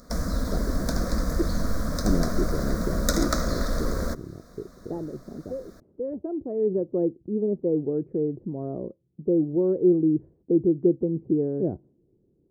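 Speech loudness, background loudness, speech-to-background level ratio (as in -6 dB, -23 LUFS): -27.5 LUFS, -29.0 LUFS, 1.5 dB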